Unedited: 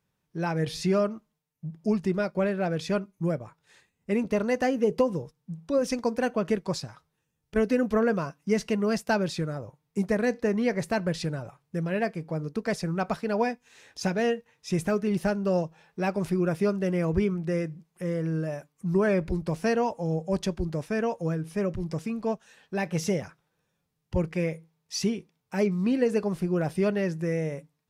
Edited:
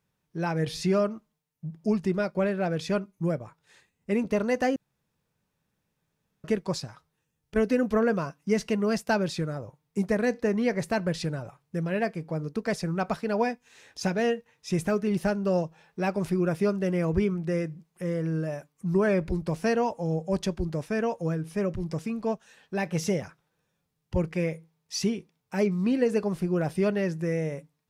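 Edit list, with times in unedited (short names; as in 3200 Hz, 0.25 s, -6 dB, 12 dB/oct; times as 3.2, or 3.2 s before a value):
4.76–6.44 room tone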